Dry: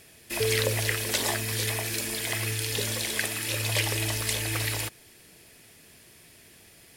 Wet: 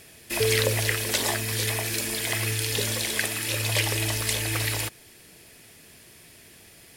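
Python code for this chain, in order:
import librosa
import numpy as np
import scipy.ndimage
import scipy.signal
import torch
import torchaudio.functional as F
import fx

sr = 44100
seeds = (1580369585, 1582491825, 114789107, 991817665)

y = fx.rider(x, sr, range_db=4, speed_s=2.0)
y = y * librosa.db_to_amplitude(2.0)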